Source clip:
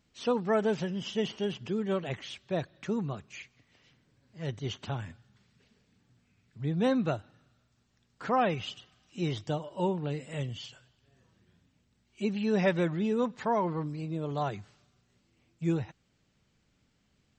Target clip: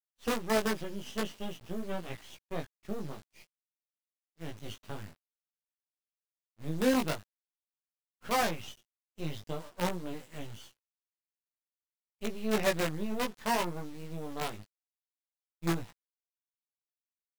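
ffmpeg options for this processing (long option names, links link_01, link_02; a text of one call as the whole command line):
ffmpeg -i in.wav -af "acrusher=bits=5:dc=4:mix=0:aa=0.000001,flanger=delay=17:depth=2.4:speed=0.5,agate=range=-33dB:threshold=-43dB:ratio=3:detection=peak" out.wav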